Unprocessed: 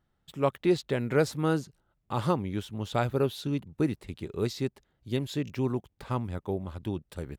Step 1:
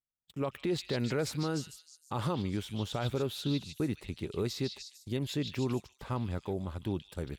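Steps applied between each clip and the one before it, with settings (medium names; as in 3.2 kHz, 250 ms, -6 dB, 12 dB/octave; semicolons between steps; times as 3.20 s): gate -47 dBFS, range -30 dB; peak limiter -23.5 dBFS, peak gain reduction 11 dB; repeats whose band climbs or falls 150 ms, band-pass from 3.6 kHz, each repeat 0.7 oct, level -1 dB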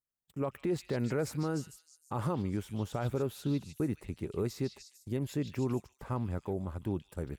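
peaking EQ 3.7 kHz -12.5 dB 1.1 oct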